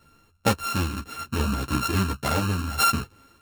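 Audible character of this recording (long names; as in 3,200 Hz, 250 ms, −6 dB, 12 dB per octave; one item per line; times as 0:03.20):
a buzz of ramps at a fixed pitch in blocks of 32 samples
tremolo saw down 0.72 Hz, depth 55%
a shimmering, thickened sound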